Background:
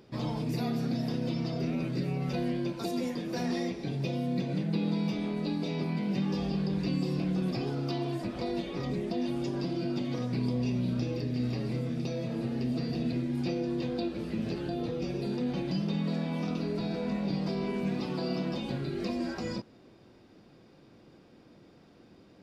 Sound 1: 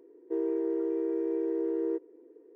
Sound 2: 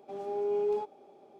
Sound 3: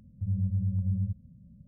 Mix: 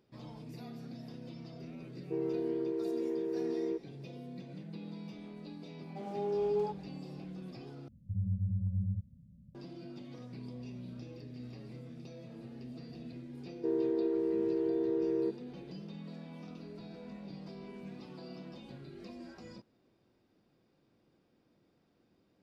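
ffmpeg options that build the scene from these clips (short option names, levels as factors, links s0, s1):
-filter_complex "[1:a]asplit=2[s0][s1];[0:a]volume=0.178[s2];[2:a]bandreject=f=50:t=h:w=6,bandreject=f=100:t=h:w=6,bandreject=f=150:t=h:w=6,bandreject=f=200:t=h:w=6,bandreject=f=250:t=h:w=6,bandreject=f=300:t=h:w=6,bandreject=f=350:t=h:w=6,bandreject=f=400:t=h:w=6,bandreject=f=450:t=h:w=6,bandreject=f=500:t=h:w=6[s3];[3:a]equalizer=f=130:w=0.5:g=3[s4];[s2]asplit=2[s5][s6];[s5]atrim=end=7.884[s7];[s4]atrim=end=1.67,asetpts=PTS-STARTPTS,volume=0.422[s8];[s6]atrim=start=9.546[s9];[s0]atrim=end=2.55,asetpts=PTS-STARTPTS,volume=0.596,afade=t=in:d=0.004:c=hsin,afade=t=out:st=2.546:d=0.004:c=hsin,adelay=1800[s10];[s3]atrim=end=1.39,asetpts=PTS-STARTPTS,volume=0.794,afade=t=in:d=0.004:c=hsin,afade=t=out:st=1.386:d=0.004:c=hsin,adelay=5870[s11];[s1]atrim=end=2.55,asetpts=PTS-STARTPTS,volume=0.841,afade=t=in:d=0.004:c=hsin,afade=t=out:st=2.546:d=0.004:c=hsin,adelay=13330[s12];[s7][s8]acrossfade=d=0.004:c1=hsin:c2=hsin[s13];[s13][s9]acrossfade=d=0.004:c1=hsin:c2=hsin[s14];[s14][s10][s11][s12]amix=inputs=4:normalize=0"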